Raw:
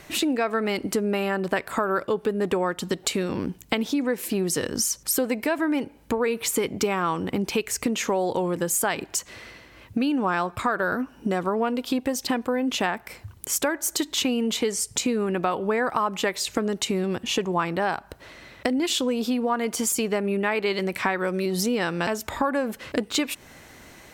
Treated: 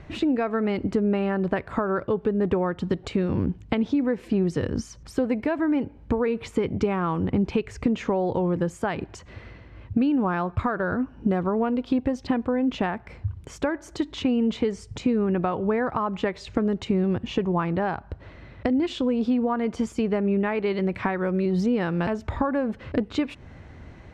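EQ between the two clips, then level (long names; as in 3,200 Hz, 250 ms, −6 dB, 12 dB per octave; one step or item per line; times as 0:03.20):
head-to-tape spacing loss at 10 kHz 29 dB
parametric band 85 Hz +7.5 dB 1.6 octaves
low-shelf EQ 140 Hz +8 dB
0.0 dB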